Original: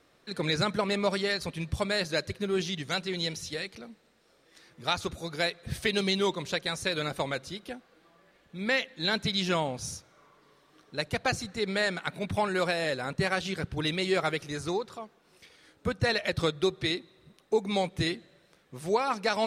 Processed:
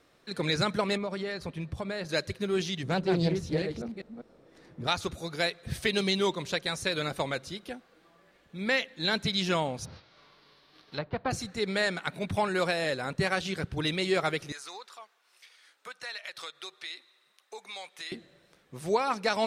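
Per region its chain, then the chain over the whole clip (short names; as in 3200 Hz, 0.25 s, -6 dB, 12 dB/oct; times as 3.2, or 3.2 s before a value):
0.97–2.09 high shelf 2700 Hz -11.5 dB + compressor 4:1, threshold -30 dBFS
2.83–4.87 reverse delay 0.198 s, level -5 dB + tilt shelf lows +9.5 dB, about 1200 Hz + Doppler distortion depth 0.21 ms
9.84–11.3 spectral whitening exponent 0.6 + treble ducked by the level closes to 1100 Hz, closed at -31.5 dBFS + resonant high shelf 5800 Hz -10 dB, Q 3
14.52–18.12 HPF 1100 Hz + compressor 2.5:1, threshold -39 dBFS
whole clip: dry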